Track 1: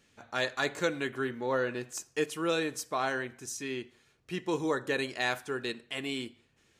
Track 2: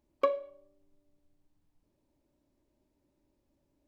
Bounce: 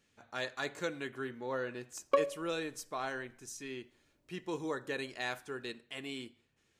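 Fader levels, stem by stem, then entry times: -7.0, -0.5 dB; 0.00, 1.90 s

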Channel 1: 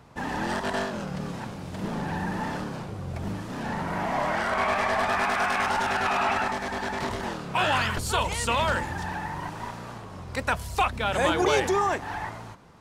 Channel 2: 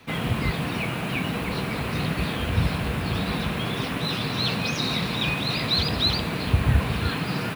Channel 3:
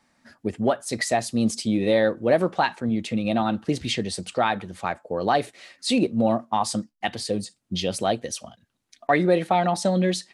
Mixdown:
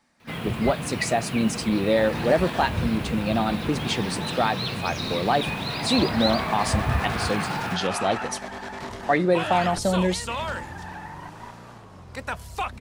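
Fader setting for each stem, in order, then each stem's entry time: -5.0, -4.5, -1.0 dB; 1.80, 0.20, 0.00 s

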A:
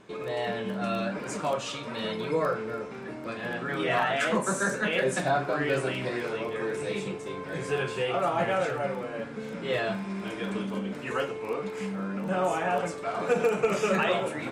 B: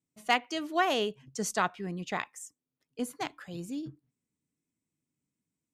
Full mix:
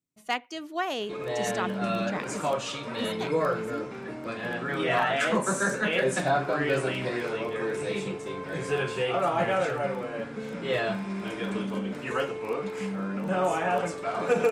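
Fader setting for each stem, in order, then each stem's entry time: +1.0, -3.0 dB; 1.00, 0.00 s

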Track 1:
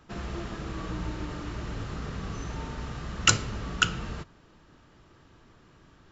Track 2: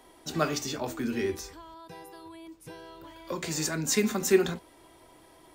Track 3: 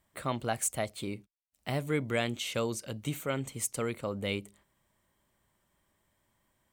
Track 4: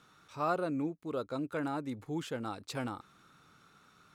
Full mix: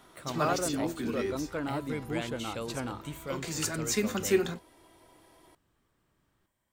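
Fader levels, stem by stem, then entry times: -18.0, -3.5, -6.0, +1.0 dB; 0.35, 0.00, 0.00, 0.00 s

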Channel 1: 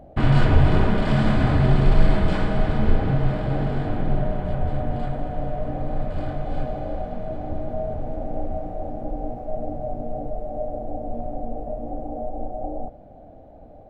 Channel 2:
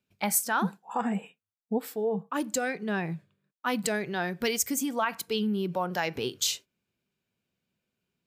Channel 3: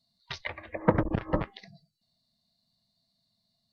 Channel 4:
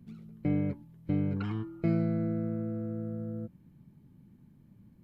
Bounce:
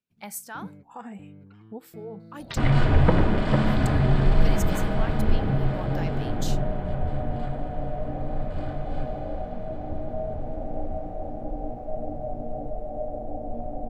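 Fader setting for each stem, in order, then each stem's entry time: -3.0, -10.5, +0.5, -17.0 dB; 2.40, 0.00, 2.20, 0.10 s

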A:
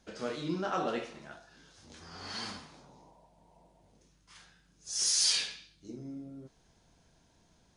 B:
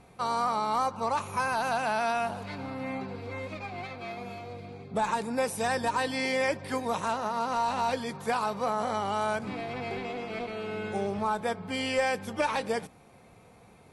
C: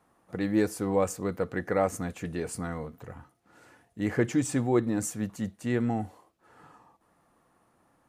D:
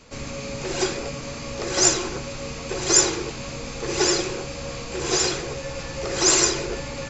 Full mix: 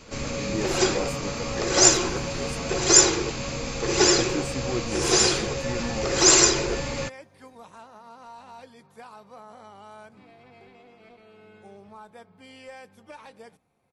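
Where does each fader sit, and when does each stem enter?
-5.0, -16.5, -5.5, +2.0 dB; 0.00, 0.70, 0.00, 0.00 s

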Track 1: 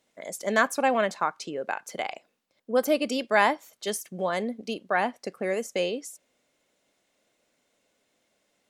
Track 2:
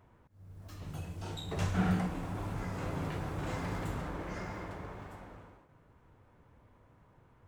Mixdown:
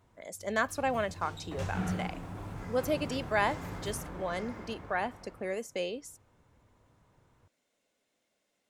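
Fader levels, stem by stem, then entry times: -7.0, -3.5 dB; 0.00, 0.00 s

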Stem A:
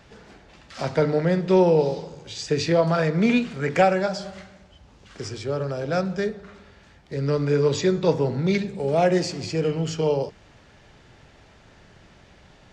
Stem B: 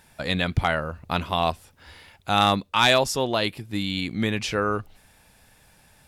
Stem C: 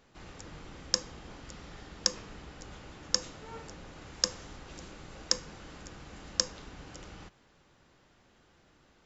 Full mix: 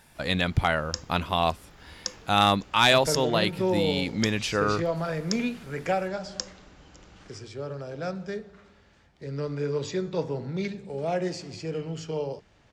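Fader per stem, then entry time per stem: -8.5, -1.0, -5.0 dB; 2.10, 0.00, 0.00 s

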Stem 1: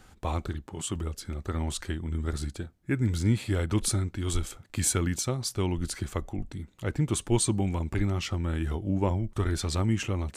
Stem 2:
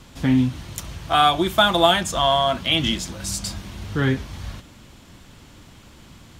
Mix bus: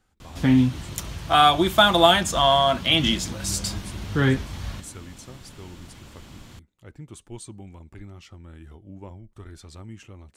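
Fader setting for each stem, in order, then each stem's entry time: -14.5, +0.5 dB; 0.00, 0.20 s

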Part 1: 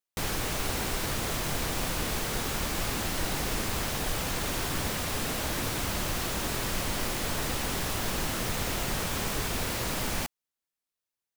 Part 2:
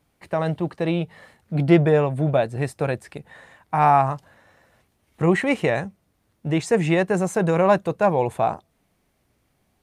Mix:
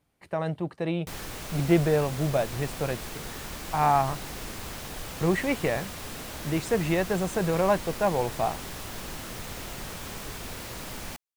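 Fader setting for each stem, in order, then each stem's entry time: -7.0, -6.0 dB; 0.90, 0.00 s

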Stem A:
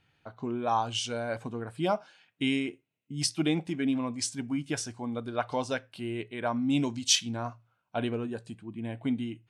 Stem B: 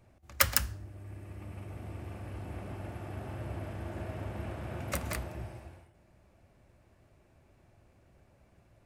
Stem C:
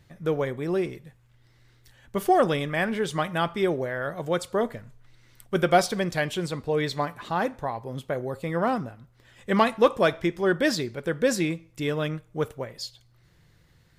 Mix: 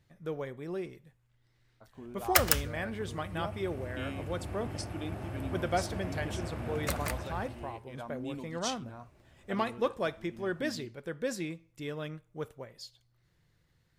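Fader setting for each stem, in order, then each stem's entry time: -13.5, +1.0, -11.0 dB; 1.55, 1.95, 0.00 s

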